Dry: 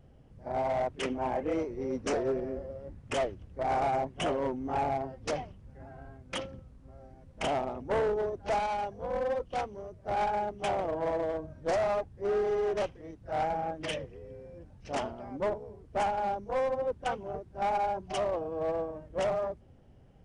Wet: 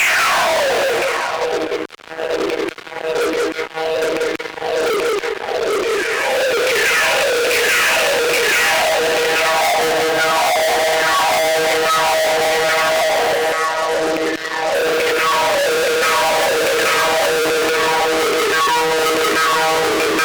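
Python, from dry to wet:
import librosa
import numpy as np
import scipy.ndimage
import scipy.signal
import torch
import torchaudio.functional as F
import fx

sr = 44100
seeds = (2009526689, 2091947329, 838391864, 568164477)

y = np.flip(x).copy()
y = fx.lpc_monotone(y, sr, seeds[0], pitch_hz=160.0, order=10)
y = fx.transient(y, sr, attack_db=10, sustain_db=-11)
y = fx.paulstretch(y, sr, seeds[1], factor=7.9, window_s=0.5, from_s=5.33)
y = fx.filter_lfo_highpass(y, sr, shape='saw_down', hz=1.2, low_hz=370.0, high_hz=2700.0, q=7.0)
y = 10.0 ** (-17.5 / 20.0) * np.tanh(y / 10.0 ** (-17.5 / 20.0))
y = fx.echo_feedback(y, sr, ms=188, feedback_pct=22, wet_db=-3.0)
y = fx.formant_shift(y, sr, semitones=-2)
y = fx.fuzz(y, sr, gain_db=46.0, gate_db=-54.0)
y = fx.low_shelf(y, sr, hz=310.0, db=-10.0)
y = fx.band_squash(y, sr, depth_pct=40)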